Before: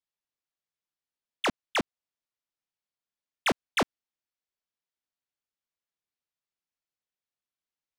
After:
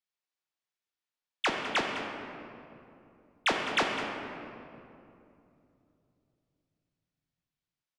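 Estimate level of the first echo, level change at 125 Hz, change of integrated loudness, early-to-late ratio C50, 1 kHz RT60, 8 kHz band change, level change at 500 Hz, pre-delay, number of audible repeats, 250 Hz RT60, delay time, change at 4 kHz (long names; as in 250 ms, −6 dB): −12.5 dB, −4.0 dB, −1.0 dB, 2.5 dB, 2.5 s, −2.5 dB, −0.5 dB, 3 ms, 1, 3.7 s, 205 ms, +1.5 dB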